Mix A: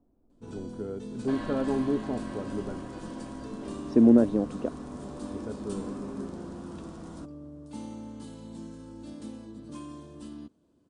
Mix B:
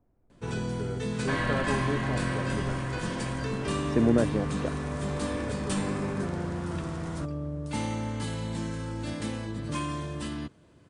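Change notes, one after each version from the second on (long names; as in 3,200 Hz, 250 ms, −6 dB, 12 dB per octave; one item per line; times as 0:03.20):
first sound +11.5 dB
second sound +5.5 dB
master: add octave-band graphic EQ 125/250/2,000 Hz +8/−9/+11 dB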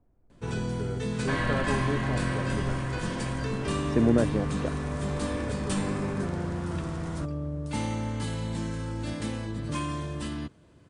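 master: add low-shelf EQ 74 Hz +5.5 dB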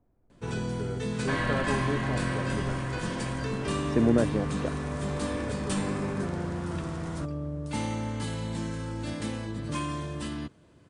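master: add low-shelf EQ 74 Hz −5.5 dB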